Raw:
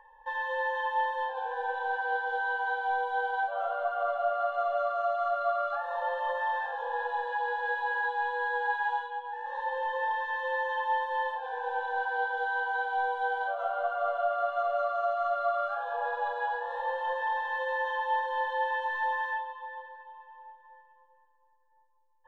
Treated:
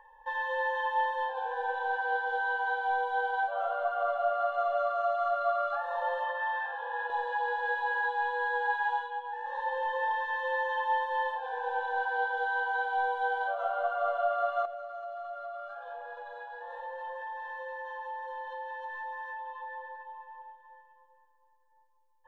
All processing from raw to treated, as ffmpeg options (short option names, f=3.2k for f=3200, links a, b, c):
-filter_complex "[0:a]asettb=1/sr,asplit=3[a][b][c];[a]atrim=end=6.244[d];[b]atrim=start=6.24:end=7.1,asetpts=PTS-STARTPTS,afade=t=in:d=0.004:c=qsin,afade=t=out:st=0.856:d=0.004:c=qsin,highpass=220,lowpass=2.4k,tiltshelf=f=1.3k:g=-7.5[e];[c]atrim=start=7.096[f];[d][e]acrossfade=d=0.004:c1=hsin:c2=qsin[g];[g][f]acrossfade=d=0.004:c1=qsin:c2=hsin,asettb=1/sr,asplit=3[h][i][j];[h]atrim=end=14.654[k];[i]atrim=start=14.65:end=20.42,asetpts=PTS-STARTPTS,afade=t=in:d=0.004:c=qsin,afade=t=out:st=5.766:d=0.004:c=qsin,acompressor=threshold=-40dB:ratio=6:attack=3.2:release=140:knee=1:detection=peak,aecho=1:1:5.6:0.51,atrim=end_sample=254457[l];[j]atrim=start=20.416[m];[k][l]acrossfade=d=0.004:c1=hsin:c2=qsin[n];[n][m]acrossfade=d=0.004:c1=qsin:c2=hsin"